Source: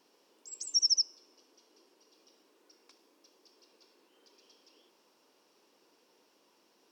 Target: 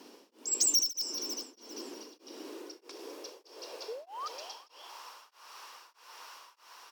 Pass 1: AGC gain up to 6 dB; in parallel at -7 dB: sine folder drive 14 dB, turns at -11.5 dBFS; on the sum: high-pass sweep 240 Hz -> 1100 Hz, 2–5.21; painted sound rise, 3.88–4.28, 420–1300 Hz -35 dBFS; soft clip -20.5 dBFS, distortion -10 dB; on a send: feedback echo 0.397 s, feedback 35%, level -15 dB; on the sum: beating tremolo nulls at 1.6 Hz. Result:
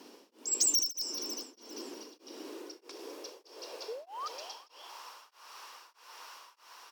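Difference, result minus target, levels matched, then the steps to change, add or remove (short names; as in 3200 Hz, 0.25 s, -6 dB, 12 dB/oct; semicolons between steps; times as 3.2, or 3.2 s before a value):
sine folder: distortion +39 dB
change: sine folder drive 14 dB, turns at 0 dBFS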